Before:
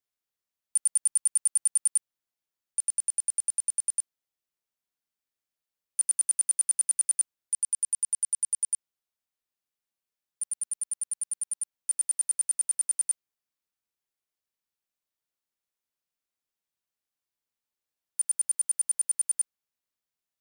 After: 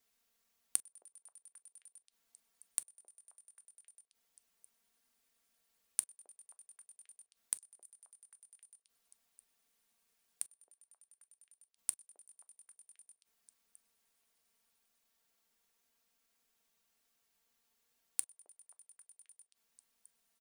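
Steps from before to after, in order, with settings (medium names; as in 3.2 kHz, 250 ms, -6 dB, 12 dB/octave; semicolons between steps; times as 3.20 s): comb 4.4 ms, depth 90%; inverted gate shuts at -26 dBFS, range -39 dB; repeats whose band climbs or falls 266 ms, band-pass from 540 Hz, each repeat 0.7 oct, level -9 dB; on a send at -15 dB: reverberation, pre-delay 4 ms; on the sum: trim +8 dB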